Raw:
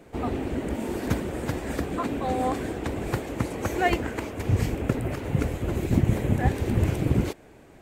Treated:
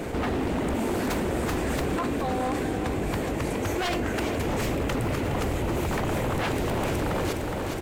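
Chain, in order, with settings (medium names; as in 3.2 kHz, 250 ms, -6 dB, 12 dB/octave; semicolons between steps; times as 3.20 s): 1.99–4.14 s: feedback comb 50 Hz, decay 0.44 s, harmonics all, mix 60%; wavefolder -26 dBFS; feedback delay 415 ms, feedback 55%, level -12.5 dB; level flattener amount 70%; trim +3 dB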